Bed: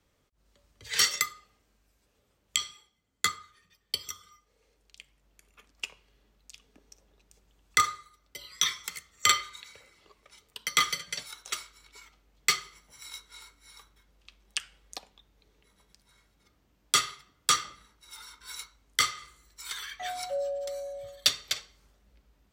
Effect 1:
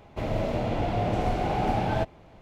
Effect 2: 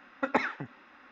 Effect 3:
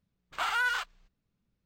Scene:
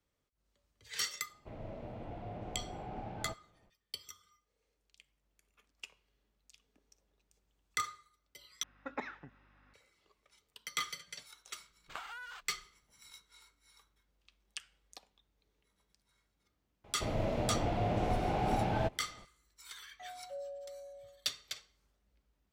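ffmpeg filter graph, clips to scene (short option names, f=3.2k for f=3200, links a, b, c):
-filter_complex "[1:a]asplit=2[a][b];[0:a]volume=-12dB[c];[a]aemphasis=mode=reproduction:type=75kf[d];[2:a]aeval=exprs='val(0)+0.002*(sin(2*PI*50*n/s)+sin(2*PI*2*50*n/s)/2+sin(2*PI*3*50*n/s)/3+sin(2*PI*4*50*n/s)/4+sin(2*PI*5*50*n/s)/5)':c=same[e];[3:a]acompressor=threshold=-43dB:ratio=12:attack=22:release=297:knee=1:detection=peak[f];[c]asplit=2[g][h];[g]atrim=end=8.634[i];[e]atrim=end=1.11,asetpts=PTS-STARTPTS,volume=-13.5dB[j];[h]atrim=start=9.736[k];[d]atrim=end=2.41,asetpts=PTS-STARTPTS,volume=-17.5dB,afade=t=in:d=0.004:c=hsin,afade=t=out:st=2.406:d=0.004:c=hsin,adelay=1290[l];[f]atrim=end=1.65,asetpts=PTS-STARTPTS,volume=-2dB,afade=t=in:d=0.004:c=hsin,afade=t=out:st=1.646:d=0.004:c=hsin,adelay=11570[m];[b]atrim=end=2.41,asetpts=PTS-STARTPTS,volume=-6dB,afade=t=in:d=0.004:c=hsin,afade=t=out:st=2.406:d=0.004:c=hsin,adelay=742644S[n];[i][j]acrossfade=d=0.004:c1=hsin:c2=hsin[o];[o][k]acrossfade=d=0.004:c1=hsin:c2=hsin[p];[p][l][m][n]amix=inputs=4:normalize=0"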